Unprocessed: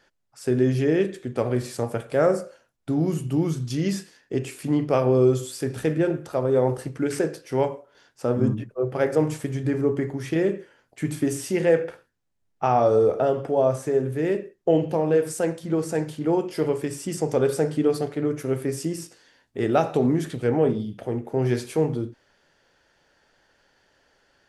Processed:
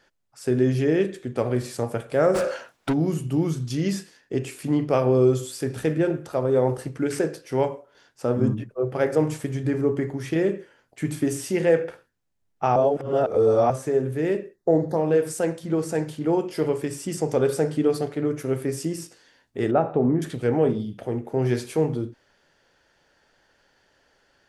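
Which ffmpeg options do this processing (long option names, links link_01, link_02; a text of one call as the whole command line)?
ffmpeg -i in.wav -filter_complex "[0:a]asplit=3[link_01][link_02][link_03];[link_01]afade=type=out:start_time=2.34:duration=0.02[link_04];[link_02]asplit=2[link_05][link_06];[link_06]highpass=frequency=720:poles=1,volume=30dB,asoftclip=type=tanh:threshold=-15dB[link_07];[link_05][link_07]amix=inputs=2:normalize=0,lowpass=frequency=2800:poles=1,volume=-6dB,afade=type=in:start_time=2.34:duration=0.02,afade=type=out:start_time=2.92:duration=0.02[link_08];[link_03]afade=type=in:start_time=2.92:duration=0.02[link_09];[link_04][link_08][link_09]amix=inputs=3:normalize=0,asettb=1/sr,asplit=3[link_10][link_11][link_12];[link_10]atrim=end=14.564[link_13];[link_11]atrim=start=14.56:end=14.97,asetpts=PTS-STARTPTS,afade=type=in:duration=0.004:curve=qsin,afade=type=out:start_time=0.406:duration=0.004:curve=qsin,asuperstop=centerf=2700:order=12:qfactor=1.9[link_14];[link_12]atrim=start=14.966[link_15];[link_13][link_14]acrossfade=duration=0.004:curve1=hsin:curve2=qsin[link_16];[link_16][link_15]acrossfade=duration=0.004:curve1=qsin:curve2=hsin,asettb=1/sr,asplit=3[link_17][link_18][link_19];[link_17]atrim=end=19.714[link_20];[link_18]atrim=start=19.71:end=20.22,asetpts=PTS-STARTPTS,afade=type=in:duration=0.004:curve=qsin,afade=type=out:start_time=0.506:duration=0.004:curve=qsin,lowpass=1300[link_21];[link_19]atrim=start=20.216[link_22];[link_20][link_21]acrossfade=duration=0.004:curve1=hsin:curve2=qsin[link_23];[link_23][link_22]acrossfade=duration=0.004:curve1=qsin:curve2=hsin,asplit=3[link_24][link_25][link_26];[link_24]atrim=end=12.762[link_27];[link_25]atrim=start=12.758:end=13.702,asetpts=PTS-STARTPTS,areverse[link_28];[link_26]atrim=start=13.698[link_29];[link_27][link_28]acrossfade=duration=0.004:curve1=hsin:curve2=hsin[link_30];[link_30][link_29]acrossfade=duration=0.004:curve1=hsin:curve2=hsin" out.wav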